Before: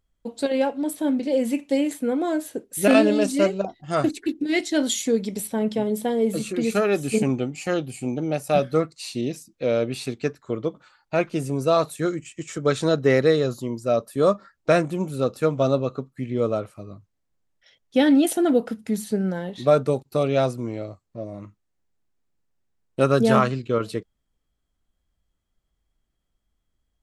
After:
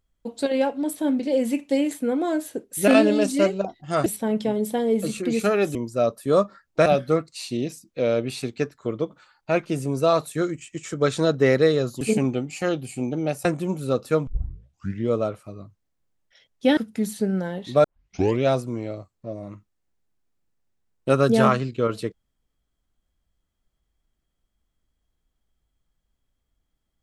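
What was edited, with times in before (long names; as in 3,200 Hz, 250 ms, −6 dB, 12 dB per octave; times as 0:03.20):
0:04.06–0:05.37: remove
0:07.06–0:08.50: swap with 0:13.65–0:14.76
0:15.58: tape start 0.81 s
0:18.08–0:18.68: remove
0:19.75: tape start 0.59 s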